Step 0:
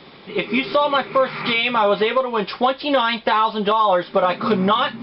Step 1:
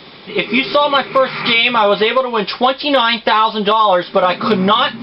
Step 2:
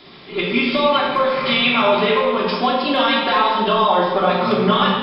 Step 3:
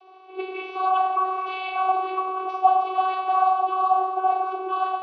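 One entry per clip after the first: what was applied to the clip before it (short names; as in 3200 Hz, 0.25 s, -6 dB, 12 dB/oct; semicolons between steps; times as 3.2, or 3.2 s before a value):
high shelf 3400 Hz +8.5 dB; gain +4 dB
shoebox room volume 1400 m³, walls mixed, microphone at 3.1 m; gain -9 dB
vocoder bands 16, saw 376 Hz; vocal rider within 3 dB 0.5 s; vowel filter a; gain +2 dB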